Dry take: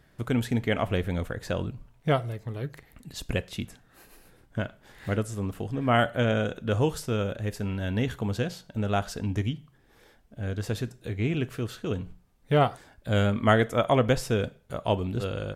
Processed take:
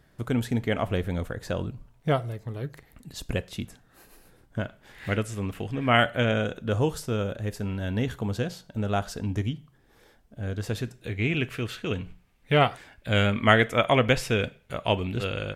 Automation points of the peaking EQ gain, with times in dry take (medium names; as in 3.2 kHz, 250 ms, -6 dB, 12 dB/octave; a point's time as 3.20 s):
peaking EQ 2.4 kHz 1.1 oct
4.60 s -2 dB
5.10 s +9 dB
5.98 s +9 dB
6.72 s -1.5 dB
10.46 s -1.5 dB
11.41 s +10.5 dB